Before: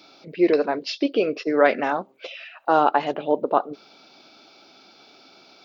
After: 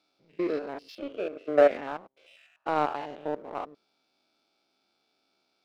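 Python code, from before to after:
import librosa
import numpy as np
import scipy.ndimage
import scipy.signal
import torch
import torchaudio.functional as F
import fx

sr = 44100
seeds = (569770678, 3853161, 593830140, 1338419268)

y = fx.spec_steps(x, sr, hold_ms=100)
y = fx.cabinet(y, sr, low_hz=240.0, low_slope=24, high_hz=3400.0, hz=(610.0, 1000.0, 1800.0), db=(9, -8, -8), at=(0.95, 1.71))
y = fx.power_curve(y, sr, exponent=1.4)
y = F.gain(torch.from_numpy(y), -3.5).numpy()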